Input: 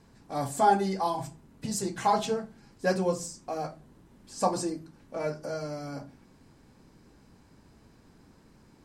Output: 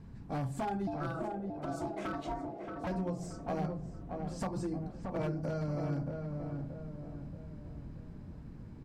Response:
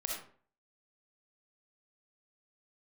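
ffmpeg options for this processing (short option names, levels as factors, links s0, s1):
-filter_complex "[0:a]bass=f=250:g=14,treble=f=4000:g=-10,acompressor=threshold=0.0355:ratio=20,aeval=exprs='0.0473*(abs(mod(val(0)/0.0473+3,4)-2)-1)':c=same,asettb=1/sr,asplit=3[s0][s1][s2];[s0]atrim=end=0.874[s3];[s1]atrim=start=0.87:end=2.87,asetpts=PTS-STARTPTS,afade=t=in:d=0.004:c=qsin,afade=t=out:st=1.996:d=0.004:c=qsin,aeval=exprs='val(0)*sin(2*PI*490*n/s)':c=same[s4];[s2]atrim=start=2.866[s5];[s3][s4]acrossfade=d=0.004:c1=hsin:c2=qsin[s6];[s6][s5]acrossfade=d=0.004:c1=qsin:c2=hsin,asplit=2[s7][s8];[s8]adelay=627,lowpass=f=1300:p=1,volume=0.631,asplit=2[s9][s10];[s10]adelay=627,lowpass=f=1300:p=1,volume=0.49,asplit=2[s11][s12];[s12]adelay=627,lowpass=f=1300:p=1,volume=0.49,asplit=2[s13][s14];[s14]adelay=627,lowpass=f=1300:p=1,volume=0.49,asplit=2[s15][s16];[s16]adelay=627,lowpass=f=1300:p=1,volume=0.49,asplit=2[s17][s18];[s18]adelay=627,lowpass=f=1300:p=1,volume=0.49[s19];[s7][s9][s11][s13][s15][s17][s19]amix=inputs=7:normalize=0,volume=0.794"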